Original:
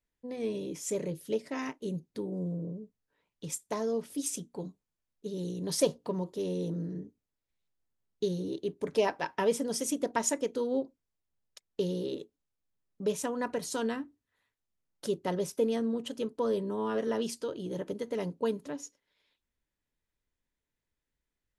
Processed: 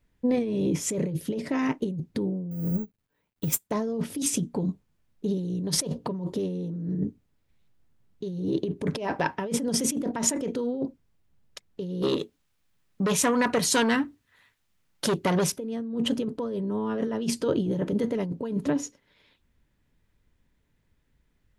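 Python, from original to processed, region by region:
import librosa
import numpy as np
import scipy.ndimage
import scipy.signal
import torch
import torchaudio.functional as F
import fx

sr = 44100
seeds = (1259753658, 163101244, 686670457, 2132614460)

y = fx.chain(x, sr, fx.law_mismatch(coded='mu'),
    fx.resample_bad(factor=2, down='none', up='zero_stuff'),
    fx.upward_expand(threshold_db=-44.0, expansion=2.5), at=(2.51, 3.71))
y = fx.chain(y, sr, fx.tilt_shelf(db=-6.5, hz=810.0),
    fx.transformer_sat(knee_hz=2300.0), at=(12.02, 15.52))
y = fx.bass_treble(y, sr, bass_db=13, treble_db=-7)
y = fx.over_compress(y, sr, threshold_db=-34.0, ratio=-1.0)
y = fx.low_shelf(y, sr, hz=110.0, db=-8.0)
y = F.gain(torch.from_numpy(y), 8.0).numpy()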